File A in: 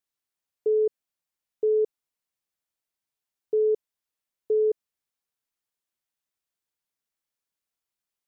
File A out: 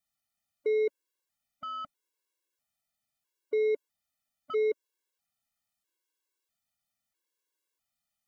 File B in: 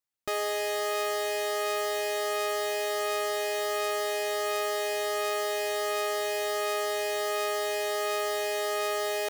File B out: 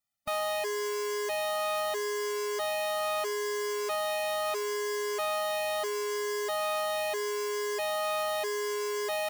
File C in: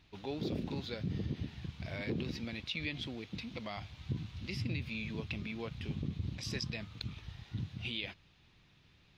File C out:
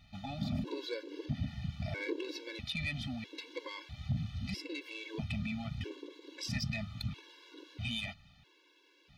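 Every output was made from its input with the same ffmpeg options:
-af "asoftclip=type=tanh:threshold=0.0316,afftfilt=real='re*gt(sin(2*PI*0.77*pts/sr)*(1-2*mod(floor(b*sr/1024/290),2)),0)':imag='im*gt(sin(2*PI*0.77*pts/sr)*(1-2*mod(floor(b*sr/1024/290),2)),0)':win_size=1024:overlap=0.75,volume=1.88"

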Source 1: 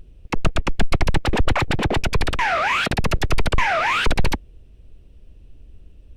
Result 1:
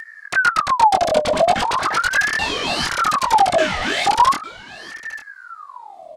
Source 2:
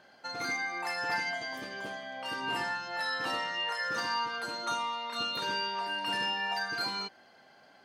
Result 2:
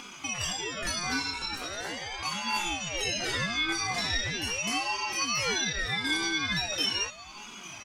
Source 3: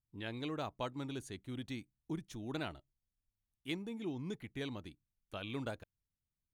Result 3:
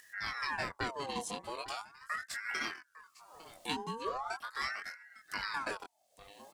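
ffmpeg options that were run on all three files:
-filter_complex "[0:a]flanger=delay=20:depth=4.8:speed=0.56,equalizer=f=125:t=o:w=1:g=6,equalizer=f=500:t=o:w=1:g=-5,equalizer=f=1000:t=o:w=1:g=-5,equalizer=f=2000:t=o:w=1:g=-9,equalizer=f=4000:t=o:w=1:g=3,equalizer=f=8000:t=o:w=1:g=8,asplit=2[s0][s1];[s1]acompressor=mode=upward:threshold=0.0501:ratio=2.5,volume=0.708[s2];[s0][s2]amix=inputs=2:normalize=0,bass=f=250:g=-9,treble=f=4000:g=-6,aecho=1:1:2.1:0.54,aecho=1:1:854:0.133,aeval=exprs='val(0)*sin(2*PI*1200*n/s+1200*0.5/0.4*sin(2*PI*0.4*n/s))':c=same,volume=1.78"

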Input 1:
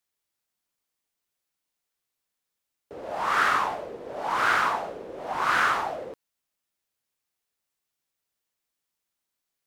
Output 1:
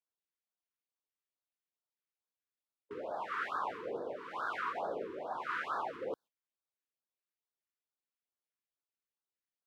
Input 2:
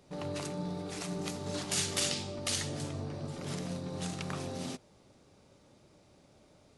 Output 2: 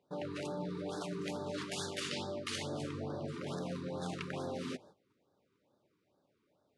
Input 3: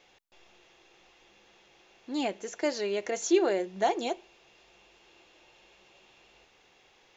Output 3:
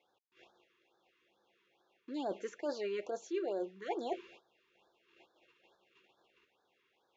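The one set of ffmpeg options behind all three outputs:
-af "agate=range=0.158:threshold=0.00141:ratio=16:detection=peak,highpass=92,bass=f=250:g=-7,treble=f=4000:g=-14,areverse,acompressor=threshold=0.01:ratio=6,areverse,afftfilt=real='re*(1-between(b*sr/1024,640*pow(2500/640,0.5+0.5*sin(2*PI*2.3*pts/sr))/1.41,640*pow(2500/640,0.5+0.5*sin(2*PI*2.3*pts/sr))*1.41))':imag='im*(1-between(b*sr/1024,640*pow(2500/640,0.5+0.5*sin(2*PI*2.3*pts/sr))/1.41,640*pow(2500/640,0.5+0.5*sin(2*PI*2.3*pts/sr))*1.41))':win_size=1024:overlap=0.75,volume=1.78"

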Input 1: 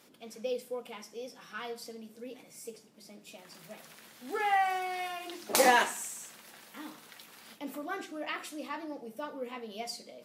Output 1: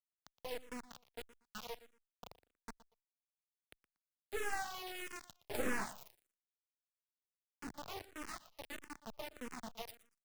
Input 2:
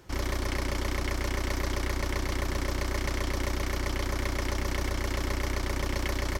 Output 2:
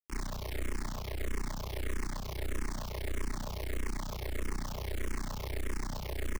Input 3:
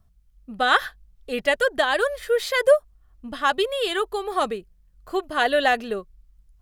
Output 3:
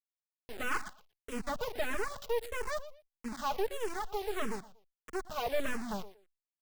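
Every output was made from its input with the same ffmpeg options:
-filter_complex "[0:a]agate=range=0.0224:threshold=0.00794:ratio=3:detection=peak,afftdn=nr=30:nf=-48,bass=f=250:g=5,treble=f=4000:g=3,aecho=1:1:4.7:0.59,acrossover=split=670|1400[s0][s1][s2];[s2]acompressor=threshold=0.0112:ratio=20[s3];[s0][s1][s3]amix=inputs=3:normalize=0,asoftclip=type=hard:threshold=0.141,acrusher=bits=3:dc=4:mix=0:aa=0.000001,aecho=1:1:118|236:0.141|0.0283,asplit=2[s4][s5];[s5]afreqshift=-1.6[s6];[s4][s6]amix=inputs=2:normalize=1,volume=0.596"

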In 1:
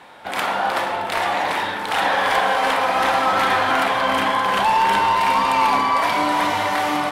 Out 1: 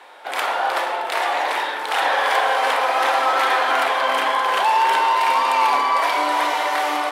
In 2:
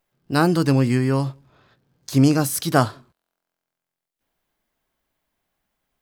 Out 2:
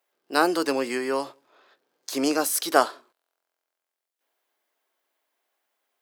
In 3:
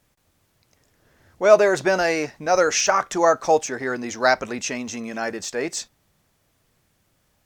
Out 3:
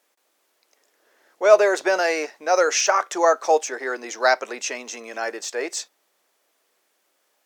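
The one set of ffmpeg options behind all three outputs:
-af "highpass=f=360:w=0.5412,highpass=f=360:w=1.3066"

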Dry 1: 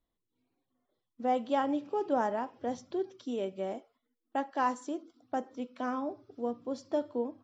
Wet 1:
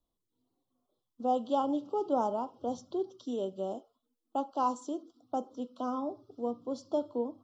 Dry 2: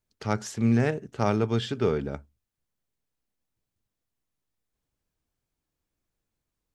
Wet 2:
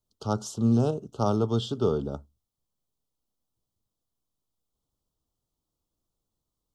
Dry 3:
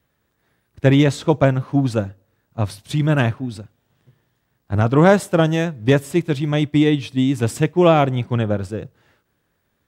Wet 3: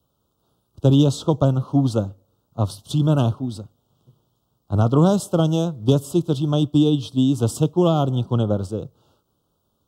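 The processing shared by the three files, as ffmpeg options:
-filter_complex "[0:a]acrossover=split=270|3000[s0][s1][s2];[s1]acompressor=threshold=0.126:ratio=6[s3];[s0][s3][s2]amix=inputs=3:normalize=0,asuperstop=centerf=2000:order=8:qfactor=1.2"

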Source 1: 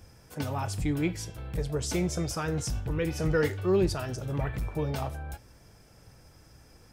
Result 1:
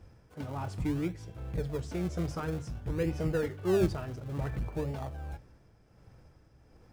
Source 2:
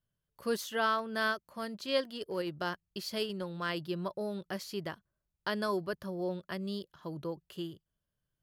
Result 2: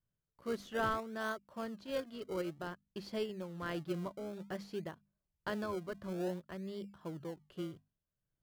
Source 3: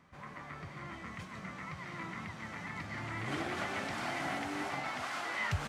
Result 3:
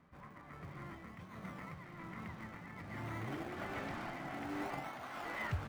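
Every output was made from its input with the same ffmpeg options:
-filter_complex "[0:a]lowpass=f=1600:p=1,bandreject=f=50:t=h:w=6,bandreject=f=100:t=h:w=6,bandreject=f=150:t=h:w=6,bandreject=f=200:t=h:w=6,bandreject=f=250:t=h:w=6,tremolo=f=1.3:d=0.42,asplit=2[s0][s1];[s1]acrusher=samples=34:mix=1:aa=0.000001:lfo=1:lforange=34:lforate=0.55,volume=0.335[s2];[s0][s2]amix=inputs=2:normalize=0,volume=0.75"

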